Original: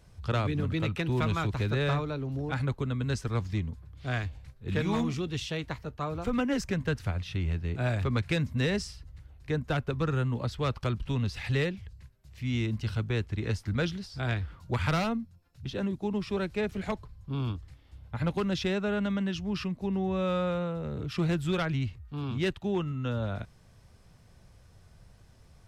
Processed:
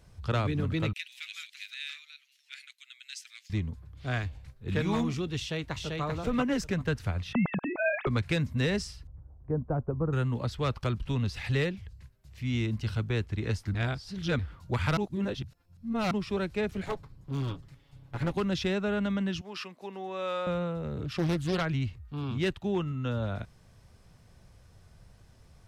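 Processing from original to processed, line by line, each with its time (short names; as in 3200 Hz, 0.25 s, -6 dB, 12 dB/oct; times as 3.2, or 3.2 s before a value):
0.93–3.5 steep high-pass 2100 Hz
5.37–6.03 echo throw 0.39 s, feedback 20%, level -2.5 dB
7.33–8.07 sine-wave speech
9.07–10.13 LPF 1000 Hz 24 dB/oct
13.75–14.39 reverse
14.97–16.11 reverse
16.86–18.32 minimum comb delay 7.2 ms
19.41–20.47 HPF 510 Hz
21.05–21.61 Doppler distortion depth 0.52 ms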